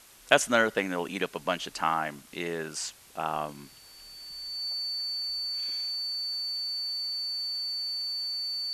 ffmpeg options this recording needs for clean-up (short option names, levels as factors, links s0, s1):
-af "bandreject=f=4500:w=30,afwtdn=0.0022"